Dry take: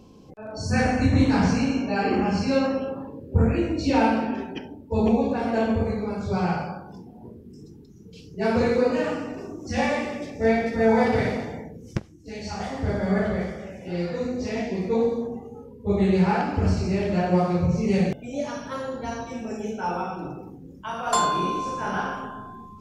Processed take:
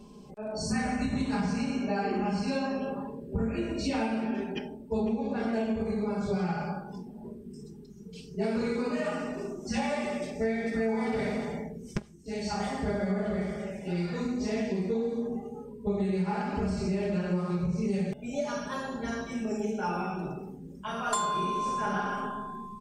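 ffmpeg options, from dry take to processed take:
ffmpeg -i in.wav -filter_complex "[0:a]asettb=1/sr,asplit=3[link_01][link_02][link_03];[link_01]atrim=end=5.004[link_04];[link_02]atrim=start=5:end=5.53,asetpts=PTS-STARTPTS,afade=type=in:duration=0.004:curve=qsin,afade=type=out:start_time=0.526:duration=0.004:curve=qsin,lowpass=6300[link_05];[link_03]atrim=start=5.526[link_06];[link_04][link_05]acrossfade=duration=0.004:curve1=hsin:curve2=qsin[link_07];[link_07][link_06]acrossfade=duration=0.004:curve1=qsin:curve2=hsin,equalizer=frequency=8400:width=7.9:gain=13,aecho=1:1:4.9:0.99,acompressor=threshold=-23dB:ratio=6,volume=-3.5dB" out.wav

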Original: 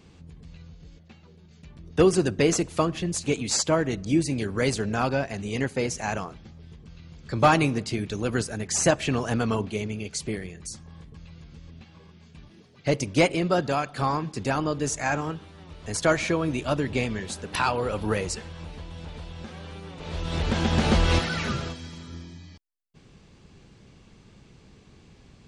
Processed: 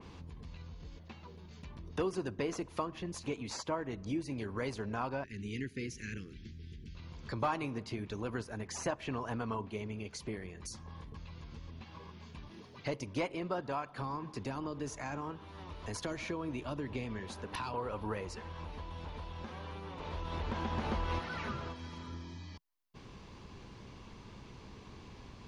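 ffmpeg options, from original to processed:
ffmpeg -i in.wav -filter_complex "[0:a]asettb=1/sr,asplit=3[link_01][link_02][link_03];[link_01]atrim=end=5.244[link_04];[link_02]atrim=start=5.24:end=6.95,asetpts=PTS-STARTPTS,afade=type=in:duration=0.004:curve=qsin,afade=type=out:start_time=1.706:duration=0.004:curve=qsin,asuperstop=centerf=830:order=8:qfactor=0.62[link_05];[link_03]atrim=start=6.946[link_06];[link_04][link_05]acrossfade=duration=0.004:curve1=hsin:curve2=qsin[link_07];[link_07][link_06]acrossfade=duration=0.004:curve1=qsin:curve2=hsin,asettb=1/sr,asplit=3[link_08][link_09][link_10];[link_08]atrim=end=13.924[link_11];[link_09]atrim=start=13.92:end=17.74,asetpts=PTS-STARTPTS,afade=type=in:duration=0.004:curve=qsin,afade=type=out:start_time=3.816:duration=0.004:curve=qsin,acrossover=split=410|3000[link_12][link_13][link_14];[link_13]acompressor=threshold=-33dB:ratio=6:attack=3.2:release=140:knee=2.83:detection=peak[link_15];[link_12][link_15][link_14]amix=inputs=3:normalize=0[link_16];[link_10]atrim=start=17.736[link_17];[link_11][link_16]acrossfade=duration=0.004:curve1=hsin:curve2=qsin[link_18];[link_18][link_17]acrossfade=duration=0.004:curve1=qsin:curve2=hsin,equalizer=frequency=160:width_type=o:width=0.33:gain=-6,equalizer=frequency=1000:width_type=o:width=0.33:gain=10,equalizer=frequency=8000:width_type=o:width=0.33:gain=-11,acompressor=threshold=-49dB:ratio=2,adynamicequalizer=threshold=0.00126:dfrequency=3000:dqfactor=0.7:tfrequency=3000:tqfactor=0.7:attack=5:release=100:ratio=0.375:range=3.5:mode=cutabove:tftype=highshelf,volume=2.5dB" out.wav

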